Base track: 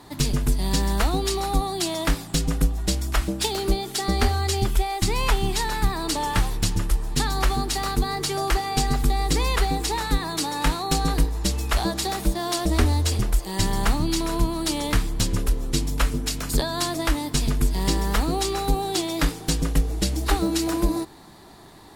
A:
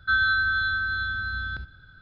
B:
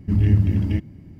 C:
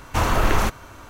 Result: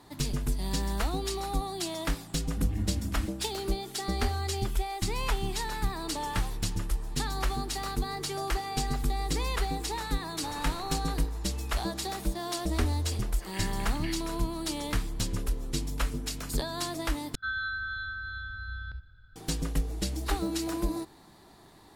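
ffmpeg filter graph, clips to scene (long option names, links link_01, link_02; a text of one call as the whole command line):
ffmpeg -i bed.wav -i cue0.wav -i cue1.wav -i cue2.wav -filter_complex "[2:a]asplit=2[link_01][link_02];[0:a]volume=-8dB[link_03];[link_01]aecho=1:1:3.8:0.65[link_04];[3:a]acompressor=threshold=-21dB:ratio=6:attack=3.2:release=140:knee=1:detection=peak[link_05];[link_02]highpass=frequency=1300:width_type=q:width=1.5[link_06];[1:a]asubboost=boost=7.5:cutoff=90[link_07];[link_03]asplit=2[link_08][link_09];[link_08]atrim=end=17.354[link_10];[link_07]atrim=end=2.01,asetpts=PTS-STARTPTS,volume=-11dB[link_11];[link_09]atrim=start=19.356[link_12];[link_04]atrim=end=1.19,asetpts=PTS-STARTPTS,volume=-15dB,afade=type=in:duration=0.004:curve=hsin,afade=type=out:start_time=1.186:duration=0.004:curve=hsin,adelay=2490[link_13];[link_05]atrim=end=1.09,asetpts=PTS-STARTPTS,volume=-17dB,afade=type=in:duration=0.004:curve=hsin,afade=type=out:start_time=1.086:duration=0.004:curve=hsin,adelay=10290[link_14];[link_06]atrim=end=1.19,asetpts=PTS-STARTPTS,volume=-1.5dB,afade=type=in:duration=0.004:curve=hsin,afade=type=out:start_time=1.186:duration=0.004:curve=hsin,adelay=13330[link_15];[link_10][link_11]acrossfade=duration=0.004:curve1=hsin:curve2=hsin[link_16];[link_16][link_12]acrossfade=duration=0.004:curve1=hsin:curve2=hsin[link_17];[link_17][link_13][link_14][link_15]amix=inputs=4:normalize=0" out.wav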